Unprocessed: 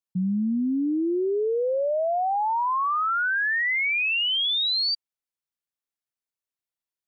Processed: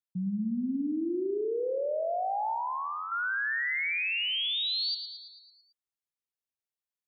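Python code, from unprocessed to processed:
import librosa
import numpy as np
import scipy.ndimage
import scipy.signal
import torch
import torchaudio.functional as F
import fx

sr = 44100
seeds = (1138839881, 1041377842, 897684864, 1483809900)

y = fx.peak_eq(x, sr, hz=1500.0, db=-10.5, octaves=0.61, at=(2.54, 3.12))
y = fx.echo_feedback(y, sr, ms=111, feedback_pct=59, wet_db=-9)
y = F.gain(torch.from_numpy(y), -7.0).numpy()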